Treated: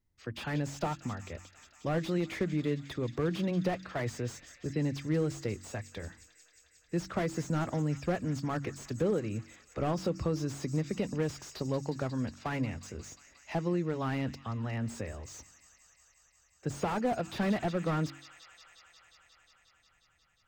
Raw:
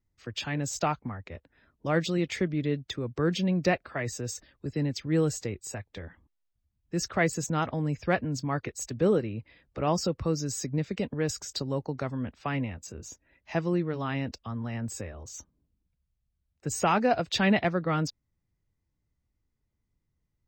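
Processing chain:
hum removal 46.62 Hz, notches 7
downward compressor 4 to 1, threshold −26 dBFS, peak gain reduction 7 dB
on a send: delay with a high-pass on its return 179 ms, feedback 83%, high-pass 1,600 Hz, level −19 dB
on the sum: slew-rate limiting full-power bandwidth 29 Hz

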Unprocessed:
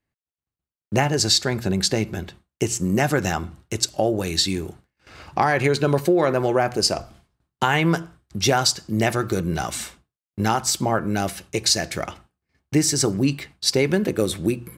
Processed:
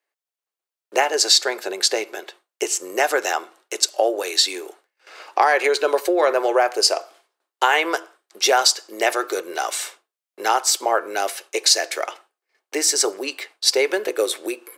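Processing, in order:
Butterworth high-pass 400 Hz 36 dB per octave
level +3.5 dB

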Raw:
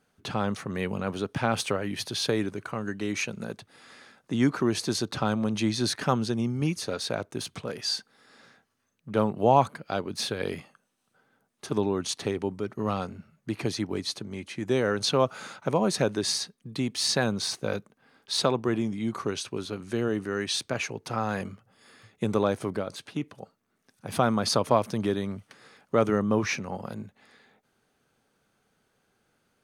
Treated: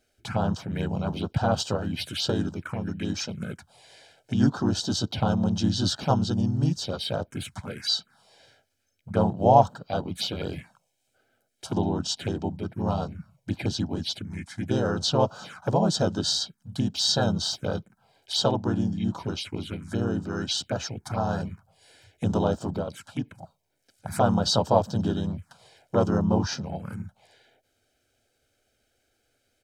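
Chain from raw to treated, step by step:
pitch-shifted copies added −3 semitones −1 dB
phaser swept by the level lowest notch 170 Hz, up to 2,200 Hz, full sweep at −24 dBFS
comb filter 1.3 ms, depth 49%

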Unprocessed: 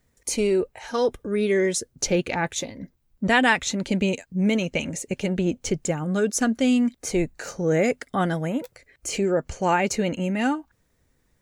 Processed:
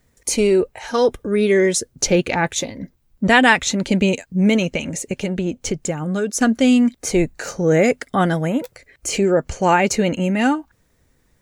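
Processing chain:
0:04.69–0:06.41: downward compressor 2 to 1, threshold −28 dBFS, peak gain reduction 6 dB
level +6 dB

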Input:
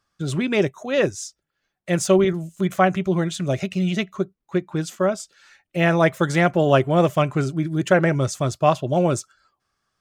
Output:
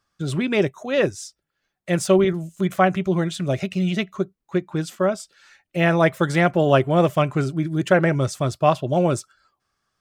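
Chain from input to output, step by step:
dynamic equaliser 6,600 Hz, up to −6 dB, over −51 dBFS, Q 4

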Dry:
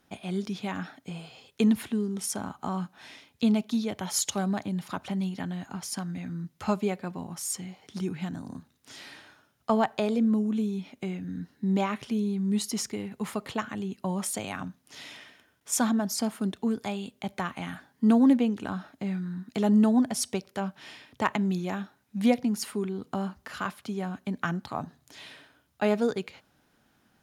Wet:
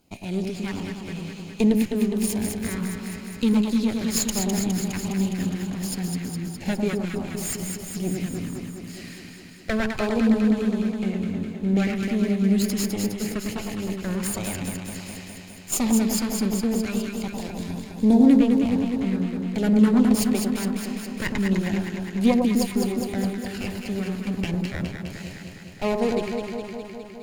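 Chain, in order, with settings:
lower of the sound and its delayed copy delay 0.42 ms
gain on a spectral selection 0:17.32–0:18.27, 1,100–3,300 Hz −13 dB
auto-filter notch saw down 1.4 Hz 560–1,900 Hz
on a send: delay that swaps between a low-pass and a high-pass 103 ms, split 1,100 Hz, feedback 84%, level −3 dB
on the sum: level +4 dB

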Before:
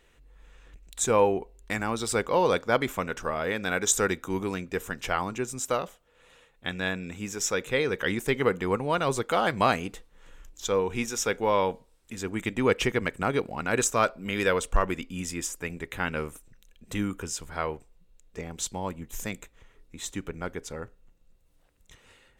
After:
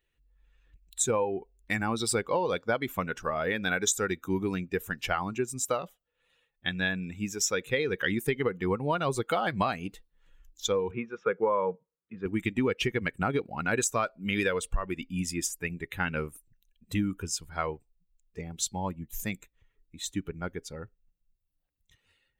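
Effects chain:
spectral dynamics exaggerated over time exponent 1.5
downward compressor 16 to 1, threshold −30 dBFS, peak gain reduction 14.5 dB
0:10.91–0:12.26: loudspeaker in its box 170–2,000 Hz, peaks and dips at 170 Hz +7 dB, 260 Hz −9 dB, 480 Hz +5 dB, 780 Hz −7 dB, 1,200 Hz +8 dB, 1,900 Hz −5 dB
level +6.5 dB

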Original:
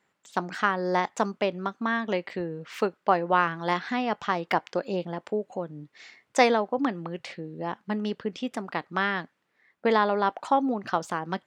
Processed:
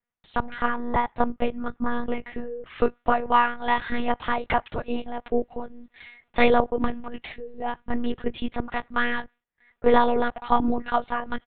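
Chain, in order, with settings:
noise gate with hold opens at −56 dBFS
comb filter 4.6 ms, depth 80%
one-pitch LPC vocoder at 8 kHz 240 Hz
0:00.54–0:02.80: high-shelf EQ 2,800 Hz −11.5 dB
level +1 dB

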